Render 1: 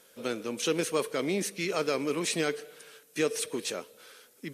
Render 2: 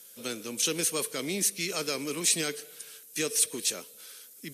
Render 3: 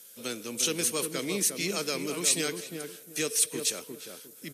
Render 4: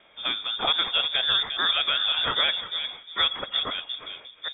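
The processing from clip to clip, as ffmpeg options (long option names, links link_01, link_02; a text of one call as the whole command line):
ffmpeg -i in.wav -filter_complex "[0:a]highshelf=frequency=2100:gain=11,acrossover=split=340|4200[link_01][link_02][link_03];[link_01]acontrast=51[link_04];[link_04][link_02][link_03]amix=inputs=3:normalize=0,aemphasis=mode=production:type=cd,volume=-7.5dB" out.wav
ffmpeg -i in.wav -filter_complex "[0:a]asplit=2[link_01][link_02];[link_02]adelay=355,lowpass=frequency=930:poles=1,volume=-4.5dB,asplit=2[link_03][link_04];[link_04]adelay=355,lowpass=frequency=930:poles=1,volume=0.27,asplit=2[link_05][link_06];[link_06]adelay=355,lowpass=frequency=930:poles=1,volume=0.27,asplit=2[link_07][link_08];[link_08]adelay=355,lowpass=frequency=930:poles=1,volume=0.27[link_09];[link_01][link_03][link_05][link_07][link_09]amix=inputs=5:normalize=0" out.wav
ffmpeg -i in.wav -af "lowpass=frequency=3200:width_type=q:width=0.5098,lowpass=frequency=3200:width_type=q:width=0.6013,lowpass=frequency=3200:width_type=q:width=0.9,lowpass=frequency=3200:width_type=q:width=2.563,afreqshift=-3800,volume=8.5dB" out.wav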